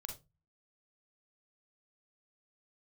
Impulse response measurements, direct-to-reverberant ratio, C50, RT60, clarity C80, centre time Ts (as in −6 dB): 2.5 dB, 7.5 dB, 0.25 s, 16.5 dB, 19 ms